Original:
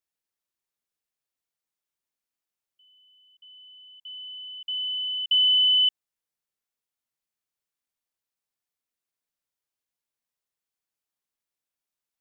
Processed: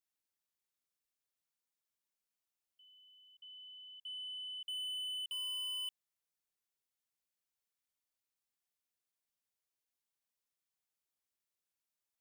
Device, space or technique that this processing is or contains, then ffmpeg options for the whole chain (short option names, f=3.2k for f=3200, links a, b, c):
saturation between pre-emphasis and de-emphasis: -af "highshelf=f=2.9k:g=10,highshelf=f=2.9k:g=3.5,asoftclip=type=tanh:threshold=-28.5dB,highshelf=f=2.9k:g=-10,volume=-5.5dB"